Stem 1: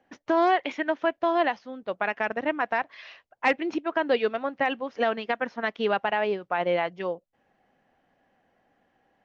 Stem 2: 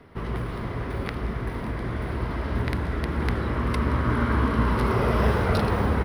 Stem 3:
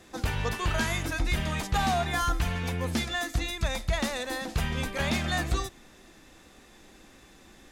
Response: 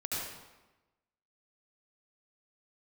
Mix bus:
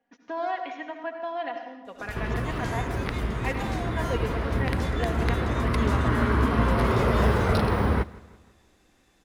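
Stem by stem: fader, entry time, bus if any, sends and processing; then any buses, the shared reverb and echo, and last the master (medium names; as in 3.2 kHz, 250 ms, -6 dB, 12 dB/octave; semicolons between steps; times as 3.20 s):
-13.5 dB, 0.00 s, send -6 dB, no echo send, comb 4.2 ms, depth 66%
0.0 dB, 2.00 s, no send, echo send -21.5 dB, none
-10.0 dB, 1.85 s, no send, no echo send, none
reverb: on, RT60 1.1 s, pre-delay 66 ms
echo: feedback delay 166 ms, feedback 47%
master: none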